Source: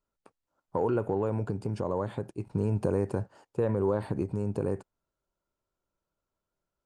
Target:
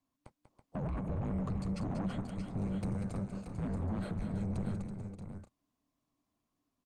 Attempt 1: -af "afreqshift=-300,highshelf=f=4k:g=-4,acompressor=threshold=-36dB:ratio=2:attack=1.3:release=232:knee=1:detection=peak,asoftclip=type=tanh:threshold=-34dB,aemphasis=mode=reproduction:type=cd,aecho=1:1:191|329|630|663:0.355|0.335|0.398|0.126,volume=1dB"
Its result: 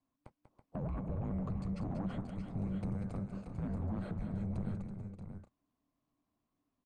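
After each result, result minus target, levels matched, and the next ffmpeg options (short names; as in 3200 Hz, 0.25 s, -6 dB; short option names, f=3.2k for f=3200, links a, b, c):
8000 Hz band -9.0 dB; compressor: peak gain reduction +4 dB
-af "afreqshift=-300,highshelf=f=4k:g=7.5,acompressor=threshold=-36dB:ratio=2:attack=1.3:release=232:knee=1:detection=peak,asoftclip=type=tanh:threshold=-34dB,aemphasis=mode=reproduction:type=cd,aecho=1:1:191|329|630|663:0.355|0.335|0.398|0.126,volume=1dB"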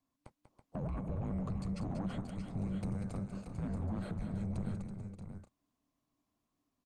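compressor: peak gain reduction +4.5 dB
-af "afreqshift=-300,highshelf=f=4k:g=7.5,acompressor=threshold=-27.5dB:ratio=2:attack=1.3:release=232:knee=1:detection=peak,asoftclip=type=tanh:threshold=-34dB,aemphasis=mode=reproduction:type=cd,aecho=1:1:191|329|630|663:0.355|0.335|0.398|0.126,volume=1dB"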